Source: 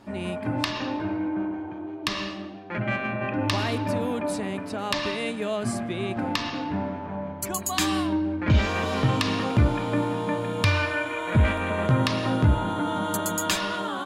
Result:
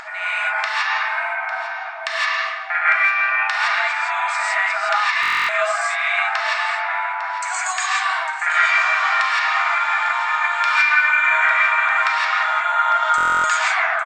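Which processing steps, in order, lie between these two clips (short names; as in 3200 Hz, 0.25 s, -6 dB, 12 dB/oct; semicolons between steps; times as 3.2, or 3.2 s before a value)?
tape stop at the end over 0.53 s; FFT band-pass 630–8600 Hz; compressor, threshold -33 dBFS, peak gain reduction 11.5 dB; band shelf 1700 Hz +12.5 dB 1.1 oct; echo 0.852 s -14.5 dB; non-linear reverb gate 0.19 s rising, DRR -6 dB; upward compressor, threshold -33 dBFS; stuck buffer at 5.21/13.16, samples 1024, times 11; gain +4.5 dB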